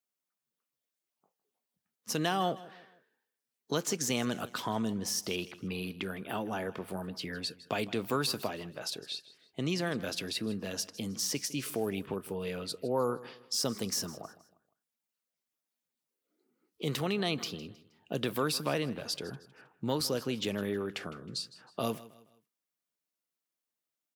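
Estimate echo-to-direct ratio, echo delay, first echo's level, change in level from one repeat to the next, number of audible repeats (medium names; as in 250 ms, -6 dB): -18.0 dB, 158 ms, -18.5 dB, -8.5 dB, 2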